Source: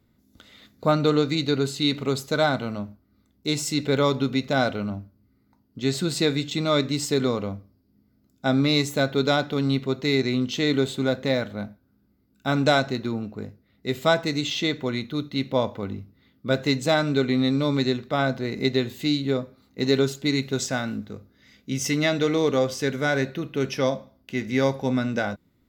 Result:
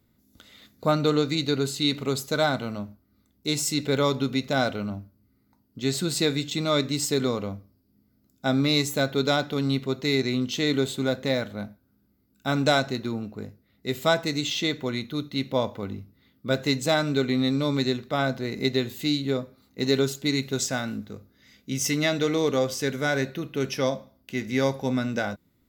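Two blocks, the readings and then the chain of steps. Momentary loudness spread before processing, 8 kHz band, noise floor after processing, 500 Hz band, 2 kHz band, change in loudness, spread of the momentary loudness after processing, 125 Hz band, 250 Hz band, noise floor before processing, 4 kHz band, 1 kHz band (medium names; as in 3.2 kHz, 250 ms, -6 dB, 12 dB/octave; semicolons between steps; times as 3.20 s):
11 LU, +2.5 dB, -67 dBFS, -2.0 dB, -1.5 dB, -1.5 dB, 11 LU, -2.0 dB, -2.0 dB, -65 dBFS, 0.0 dB, -2.0 dB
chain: treble shelf 6.9 kHz +8.5 dB; trim -2 dB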